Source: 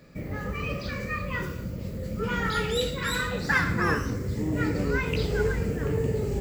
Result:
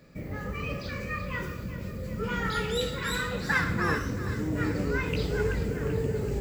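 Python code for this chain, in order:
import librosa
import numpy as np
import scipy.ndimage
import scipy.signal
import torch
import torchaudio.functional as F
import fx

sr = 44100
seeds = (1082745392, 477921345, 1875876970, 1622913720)

y = fx.echo_feedback(x, sr, ms=383, feedback_pct=56, wet_db=-13.0)
y = y * librosa.db_to_amplitude(-2.5)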